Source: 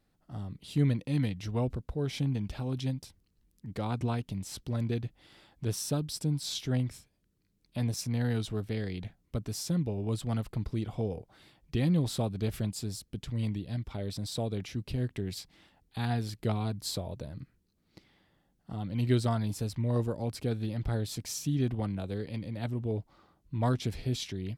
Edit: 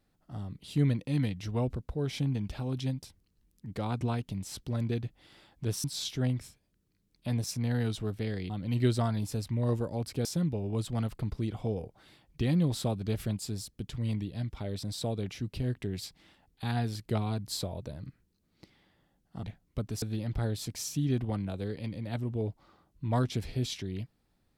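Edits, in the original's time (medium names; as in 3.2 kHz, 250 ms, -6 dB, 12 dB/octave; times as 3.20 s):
5.84–6.34 s: delete
9.00–9.59 s: swap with 18.77–20.52 s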